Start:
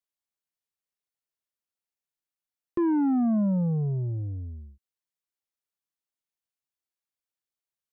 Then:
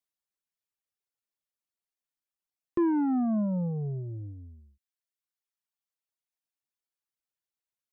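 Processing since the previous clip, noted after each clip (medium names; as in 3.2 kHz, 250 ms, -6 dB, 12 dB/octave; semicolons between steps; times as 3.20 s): reverb removal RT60 1.5 s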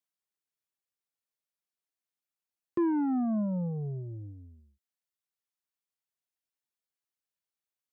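high-pass 80 Hz; trim -2 dB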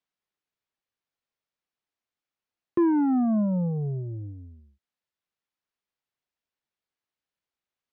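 distance through air 140 m; trim +6 dB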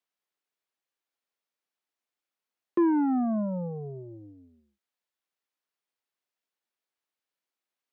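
high-pass 260 Hz 12 dB/octave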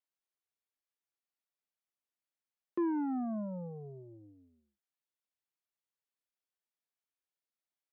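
vibrato 0.74 Hz 11 cents; trim -9 dB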